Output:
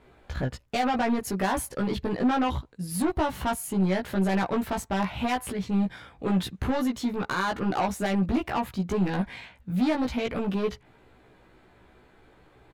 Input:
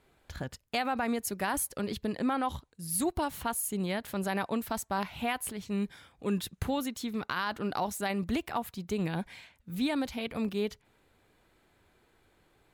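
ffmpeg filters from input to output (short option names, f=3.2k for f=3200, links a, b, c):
-filter_complex "[0:a]lowpass=f=2k:p=1,asoftclip=type=tanh:threshold=-32dB,asplit=2[a][b];[b]adelay=16,volume=-2dB[c];[a][c]amix=inputs=2:normalize=0,volume=9dB"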